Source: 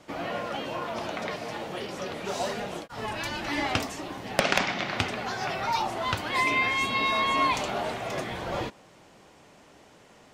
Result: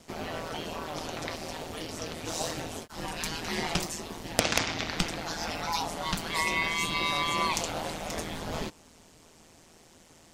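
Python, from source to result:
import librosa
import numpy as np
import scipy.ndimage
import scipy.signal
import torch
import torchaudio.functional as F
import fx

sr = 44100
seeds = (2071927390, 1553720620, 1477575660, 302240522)

y = fx.bass_treble(x, sr, bass_db=7, treble_db=12)
y = y * np.sin(2.0 * np.pi * 81.0 * np.arange(len(y)) / sr)
y = y * librosa.db_to_amplitude(-2.0)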